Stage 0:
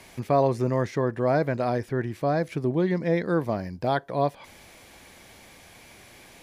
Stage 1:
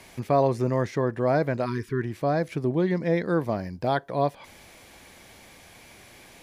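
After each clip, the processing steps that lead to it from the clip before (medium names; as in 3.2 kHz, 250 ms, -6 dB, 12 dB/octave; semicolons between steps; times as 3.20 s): spectral selection erased 1.66–2.03 s, 460–930 Hz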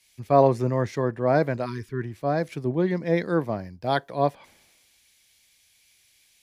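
three bands expanded up and down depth 100%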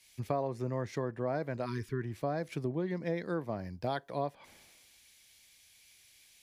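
compression 6:1, threshold -31 dBFS, peak gain reduction 18 dB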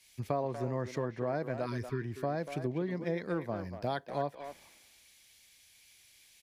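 speakerphone echo 240 ms, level -8 dB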